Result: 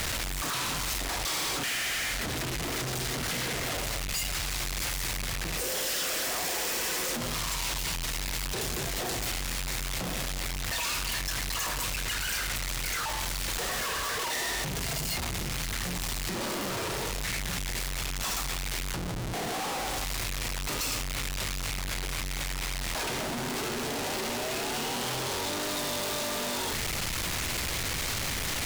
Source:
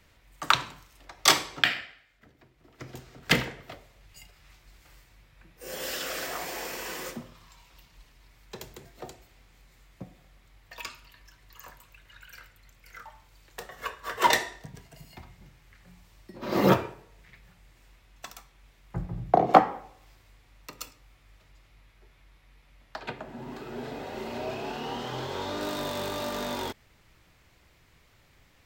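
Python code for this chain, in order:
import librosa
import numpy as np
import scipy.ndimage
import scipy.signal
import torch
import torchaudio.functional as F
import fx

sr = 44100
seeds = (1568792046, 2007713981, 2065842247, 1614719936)

y = np.sign(x) * np.sqrt(np.mean(np.square(x)))
y = fx.peak_eq(y, sr, hz=6800.0, db=5.0, octaves=2.6)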